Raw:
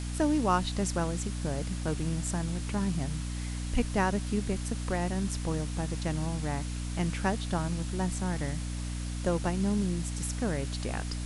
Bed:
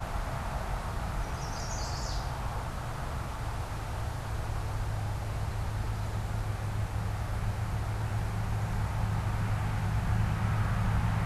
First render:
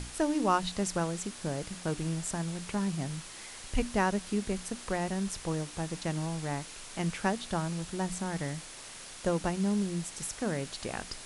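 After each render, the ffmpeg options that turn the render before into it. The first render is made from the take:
ffmpeg -i in.wav -af "bandreject=frequency=60:width_type=h:width=6,bandreject=frequency=120:width_type=h:width=6,bandreject=frequency=180:width_type=h:width=6,bandreject=frequency=240:width_type=h:width=6,bandreject=frequency=300:width_type=h:width=6" out.wav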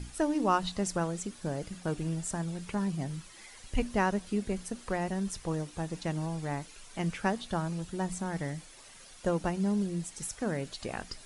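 ffmpeg -i in.wav -af "afftdn=noise_reduction=10:noise_floor=-46" out.wav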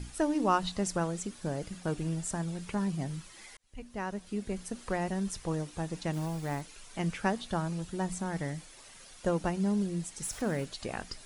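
ffmpeg -i in.wav -filter_complex "[0:a]asettb=1/sr,asplit=3[link_01][link_02][link_03];[link_01]atrim=end=6.134[link_04];[link_02]atrim=start=6.13:end=6.61,asetpts=PTS-STARTPTS,afade=type=in:duration=0.004:curve=qsin,afade=type=out:start_time=0.476:duration=0.004:curve=qsin,acrusher=bits=5:mode=log:mix=0:aa=0.000001[link_05];[link_03]atrim=start=6.606[link_06];[link_04][link_05]acrossfade=duration=0.004:curve1=hsin:curve2=qsin[link_07];[link_07][link_06]acrossfade=duration=0.004:curve1=qsin:curve2=hsin,asettb=1/sr,asplit=3[link_08][link_09][link_10];[link_08]atrim=end=10.244[link_11];[link_09]atrim=start=10.24:end=10.65,asetpts=PTS-STARTPTS,afade=type=in:duration=0.004:curve=qsin,afade=type=out:start_time=0.406:duration=0.004:curve=qsin,aeval=exprs='val(0)+0.5*0.00631*sgn(val(0))':channel_layout=same[link_12];[link_10]atrim=start=10.646[link_13];[link_11][link_12]acrossfade=duration=0.004:curve1=hsin:curve2=qsin[link_14];[link_14][link_13]acrossfade=duration=0.004:curve1=qsin:curve2=hsin,asplit=2[link_15][link_16];[link_15]atrim=end=3.57,asetpts=PTS-STARTPTS,afade=type=out:start_time=3.566:duration=0.004:curve=hsin[link_17];[link_16]atrim=start=3.57,asetpts=PTS-STARTPTS,afade=type=in:duration=1.25[link_18];[link_17][link_18]concat=n=2:v=0:a=1" out.wav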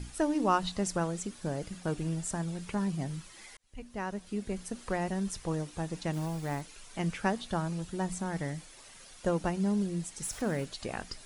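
ffmpeg -i in.wav -af anull out.wav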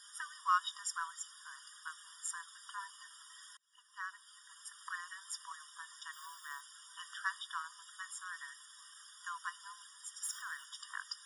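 ffmpeg -i in.wav -af "afftfilt=real='re*eq(mod(floor(b*sr/1024/950),2),1)':imag='im*eq(mod(floor(b*sr/1024/950),2),1)':win_size=1024:overlap=0.75" out.wav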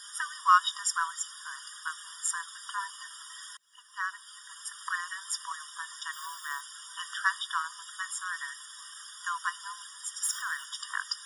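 ffmpeg -i in.wav -af "volume=10dB" out.wav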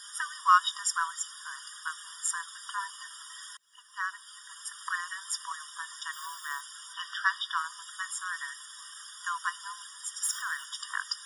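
ffmpeg -i in.wav -filter_complex "[0:a]asettb=1/sr,asplit=3[link_01][link_02][link_03];[link_01]atrim=end=6.934[link_04];[link_02]atrim=start=6.93:end=7.57,asetpts=PTS-STARTPTS,afade=type=in:duration=0.004:curve=qsin,afade=type=out:start_time=0.636:duration=0.004:curve=qsin,highshelf=frequency=6000:width_type=q:width=1.5:gain=-6.5[link_05];[link_03]atrim=start=7.566[link_06];[link_04][link_05]acrossfade=duration=0.004:curve1=hsin:curve2=qsin[link_07];[link_07][link_06]acrossfade=duration=0.004:curve1=qsin:curve2=hsin" out.wav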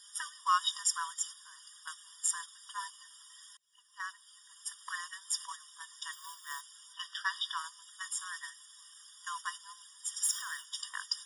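ffmpeg -i in.wav -af "equalizer=frequency=1400:width=1.8:gain=-11,agate=range=-8dB:threshold=-42dB:ratio=16:detection=peak" out.wav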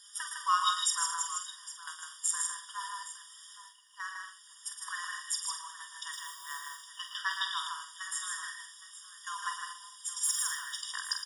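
ffmpeg -i in.wav -filter_complex "[0:a]asplit=2[link_01][link_02];[link_02]adelay=47,volume=-8dB[link_03];[link_01][link_03]amix=inputs=2:normalize=0,aecho=1:1:114|156|237|814:0.376|0.631|0.211|0.178" out.wav

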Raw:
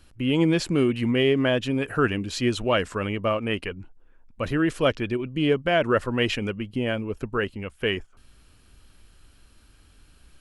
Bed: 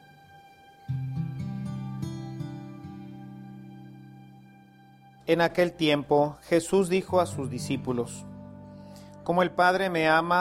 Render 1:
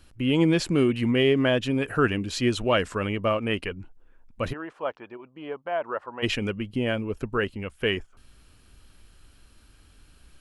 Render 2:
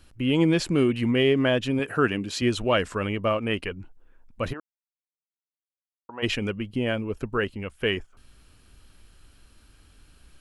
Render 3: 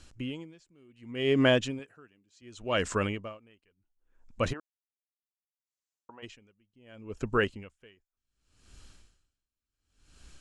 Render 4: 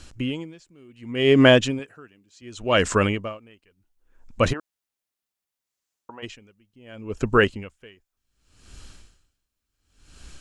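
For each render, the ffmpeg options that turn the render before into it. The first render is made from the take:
ffmpeg -i in.wav -filter_complex "[0:a]asplit=3[link_01][link_02][link_03];[link_01]afade=type=out:start_time=4.52:duration=0.02[link_04];[link_02]bandpass=frequency=890:width_type=q:width=2.5,afade=type=in:start_time=4.52:duration=0.02,afade=type=out:start_time=6.22:duration=0.02[link_05];[link_03]afade=type=in:start_time=6.22:duration=0.02[link_06];[link_04][link_05][link_06]amix=inputs=3:normalize=0" out.wav
ffmpeg -i in.wav -filter_complex "[0:a]asettb=1/sr,asplit=3[link_01][link_02][link_03];[link_01]atrim=end=1.794[link_04];[link_02]atrim=start=1.79:end=2.42,asetpts=PTS-STARTPTS,afade=type=in:duration=0.004:curve=qsin,afade=type=out:start_time=0.626:duration=0.004:curve=qsin,highpass=120[link_05];[link_03]atrim=start=2.416[link_06];[link_04][link_05]acrossfade=duration=0.004:curve1=hsin:curve2=qsin[link_07];[link_07][link_06]acrossfade=duration=0.004:curve1=qsin:curve2=hsin,asplit=3[link_08][link_09][link_10];[link_08]atrim=end=4.6,asetpts=PTS-STARTPTS,afade=type=out:start_time=4.596:duration=0.004:curve=hsin[link_11];[link_09]atrim=start=4.6:end=6.09,asetpts=PTS-STARTPTS,volume=0[link_12];[link_10]atrim=start=6.09,asetpts=PTS-STARTPTS,afade=type=in:duration=0.004:curve=hsin[link_13];[link_11][link_12][link_13]concat=n=3:v=0:a=1" out.wav
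ffmpeg -i in.wav -af "lowpass=frequency=7100:width_type=q:width=2.9,aeval=exprs='val(0)*pow(10,-39*(0.5-0.5*cos(2*PI*0.68*n/s))/20)':channel_layout=same" out.wav
ffmpeg -i in.wav -af "volume=9dB" out.wav

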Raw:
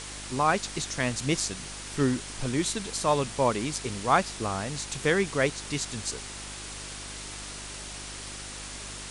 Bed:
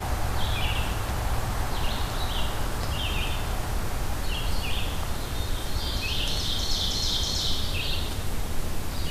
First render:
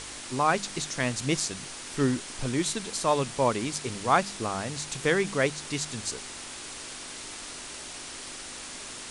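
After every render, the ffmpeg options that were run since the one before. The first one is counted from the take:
ffmpeg -i in.wav -af "bandreject=frequency=50:width_type=h:width=4,bandreject=frequency=100:width_type=h:width=4,bandreject=frequency=150:width_type=h:width=4,bandreject=frequency=200:width_type=h:width=4" out.wav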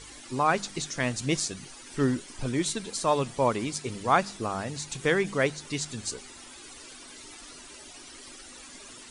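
ffmpeg -i in.wav -af "afftdn=noise_reduction=13:noise_floor=-41" out.wav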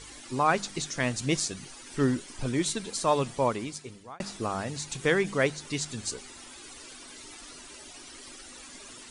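ffmpeg -i in.wav -filter_complex "[0:a]asplit=2[link_01][link_02];[link_01]atrim=end=4.2,asetpts=PTS-STARTPTS,afade=type=out:start_time=3.3:duration=0.9[link_03];[link_02]atrim=start=4.2,asetpts=PTS-STARTPTS,afade=type=in:duration=0.004:curve=hsin[link_04];[link_03][link_04]concat=n=2:v=0:a=1" out.wav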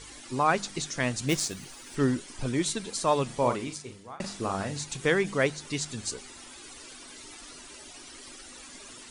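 ffmpeg -i in.wav -filter_complex "[0:a]asplit=3[link_01][link_02][link_03];[link_01]afade=type=out:start_time=1.28:duration=0.02[link_04];[link_02]acrusher=bits=3:mode=log:mix=0:aa=0.000001,afade=type=in:start_time=1.28:duration=0.02,afade=type=out:start_time=1.94:duration=0.02[link_05];[link_03]afade=type=in:start_time=1.94:duration=0.02[link_06];[link_04][link_05][link_06]amix=inputs=3:normalize=0,asettb=1/sr,asplit=3[link_07][link_08][link_09];[link_07]atrim=end=3.254[link_10];[link_08]atrim=start=3.25:end=4.84,asetpts=PTS-STARTPTS,afade=type=in:duration=0.004:curve=qsin,afade=type=out:start_time=1.586:duration=0.004:curve=qsin,asplit=2[link_11][link_12];[link_12]adelay=41,volume=-7dB[link_13];[link_11][link_13]amix=inputs=2:normalize=0,atrim=end_sample=70119[link_14];[link_09]atrim=start=4.836[link_15];[link_10][link_14]acrossfade=duration=0.004:curve1=hsin:curve2=qsin[link_16];[link_16][link_15]acrossfade=duration=0.004:curve1=qsin:curve2=hsin" out.wav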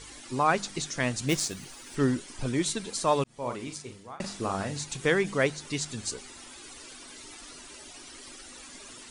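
ffmpeg -i in.wav -filter_complex "[0:a]asplit=2[link_01][link_02];[link_01]atrim=end=3.24,asetpts=PTS-STARTPTS,afade=type=out:start_time=3.236:duration=0.004:curve=hsin[link_03];[link_02]atrim=start=3.24,asetpts=PTS-STARTPTS,afade=type=in:duration=0.56[link_04];[link_03][link_04]concat=n=2:v=0:a=1" out.wav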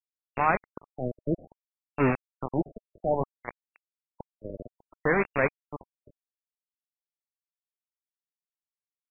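ffmpeg -i in.wav -af "acrusher=bits=3:mix=0:aa=0.000001,afftfilt=real='re*lt(b*sr/1024,620*pow(2800/620,0.5+0.5*sin(2*PI*0.61*pts/sr)))':imag='im*lt(b*sr/1024,620*pow(2800/620,0.5+0.5*sin(2*PI*0.61*pts/sr)))':win_size=1024:overlap=0.75" out.wav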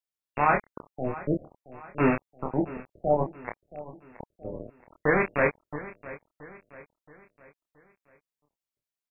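ffmpeg -i in.wav -filter_complex "[0:a]asplit=2[link_01][link_02];[link_02]adelay=27,volume=-4dB[link_03];[link_01][link_03]amix=inputs=2:normalize=0,aecho=1:1:674|1348|2022|2696:0.141|0.0622|0.0273|0.012" out.wav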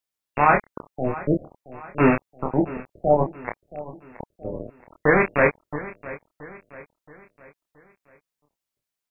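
ffmpeg -i in.wav -af "volume=5.5dB" out.wav

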